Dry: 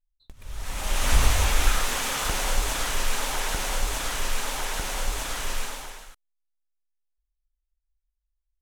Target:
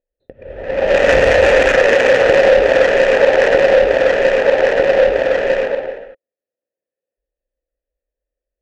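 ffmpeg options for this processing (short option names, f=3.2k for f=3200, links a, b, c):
-filter_complex "[0:a]asplit=3[a][b][c];[a]bandpass=f=530:t=q:w=8,volume=0dB[d];[b]bandpass=f=1.84k:t=q:w=8,volume=-6dB[e];[c]bandpass=f=2.48k:t=q:w=8,volume=-9dB[f];[d][e][f]amix=inputs=3:normalize=0,adynamicsmooth=sensitivity=5.5:basefreq=680,alimiter=level_in=36dB:limit=-1dB:release=50:level=0:latency=1,volume=-1dB"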